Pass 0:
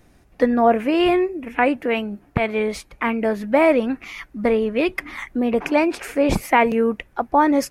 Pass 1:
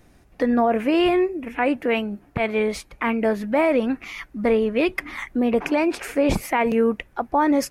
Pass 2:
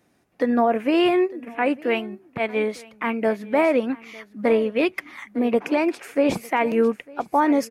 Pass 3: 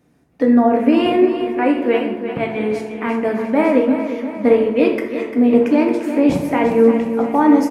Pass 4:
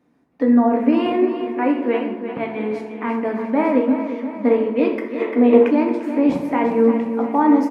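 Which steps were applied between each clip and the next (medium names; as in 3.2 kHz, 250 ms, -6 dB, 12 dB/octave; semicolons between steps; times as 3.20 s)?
peak limiter -11 dBFS, peak gain reduction 7 dB
high-pass 160 Hz 12 dB/octave; delay 903 ms -16.5 dB; upward expansion 1.5:1, over -32 dBFS; trim +1 dB
bass shelf 440 Hz +10 dB; feedback delay 347 ms, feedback 53%, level -10 dB; plate-style reverb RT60 0.93 s, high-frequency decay 0.55×, DRR 1.5 dB; trim -2 dB
time-frequency box 5.21–5.71 s, 310–4300 Hz +7 dB; ten-band graphic EQ 250 Hz +11 dB, 500 Hz +5 dB, 1 kHz +11 dB, 2 kHz +6 dB, 4 kHz +5 dB; trim -13.5 dB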